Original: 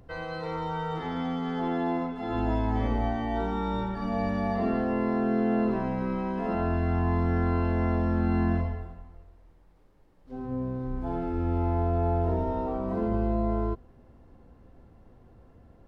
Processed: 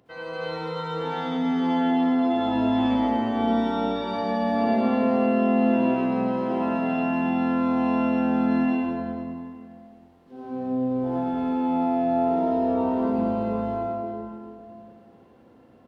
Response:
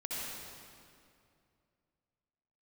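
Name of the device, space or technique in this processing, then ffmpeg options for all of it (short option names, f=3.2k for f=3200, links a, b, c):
PA in a hall: -filter_complex "[0:a]highpass=200,equalizer=f=3.2k:t=o:w=0.72:g=5,aecho=1:1:101:0.398[a];[1:a]atrim=start_sample=2205[b];[a][b]afir=irnorm=-1:irlink=0,volume=1dB"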